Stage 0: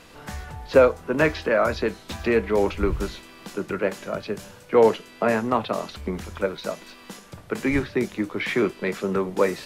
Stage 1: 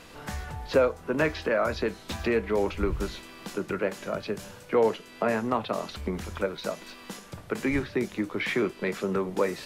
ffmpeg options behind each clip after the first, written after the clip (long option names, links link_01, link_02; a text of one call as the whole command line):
ffmpeg -i in.wav -af "acompressor=threshold=-30dB:ratio=1.5" out.wav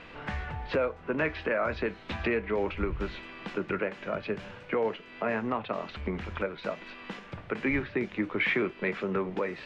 ffmpeg -i in.wav -af "alimiter=limit=-19.5dB:level=0:latency=1:release=391,lowpass=frequency=2500:width_type=q:width=1.6" out.wav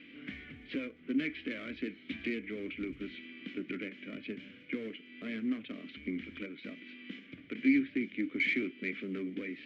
ffmpeg -i in.wav -filter_complex "[0:a]acrusher=bits=8:mode=log:mix=0:aa=0.000001,aeval=exprs='clip(val(0),-1,0.0398)':channel_layout=same,asplit=3[link_01][link_02][link_03];[link_01]bandpass=frequency=270:width_type=q:width=8,volume=0dB[link_04];[link_02]bandpass=frequency=2290:width_type=q:width=8,volume=-6dB[link_05];[link_03]bandpass=frequency=3010:width_type=q:width=8,volume=-9dB[link_06];[link_04][link_05][link_06]amix=inputs=3:normalize=0,volume=7dB" out.wav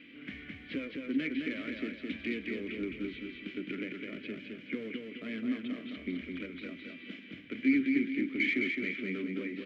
ffmpeg -i in.wav -af "aecho=1:1:212|424|636|848|1060|1272:0.631|0.278|0.122|0.0537|0.0236|0.0104" out.wav